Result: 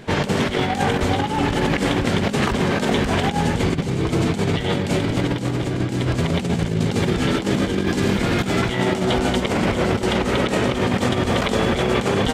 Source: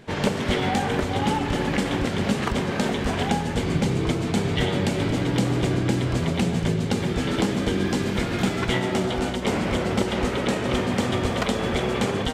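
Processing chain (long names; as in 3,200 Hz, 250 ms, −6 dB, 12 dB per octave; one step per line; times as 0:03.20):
compressor whose output falls as the input rises −25 dBFS, ratio −0.5
level +5.5 dB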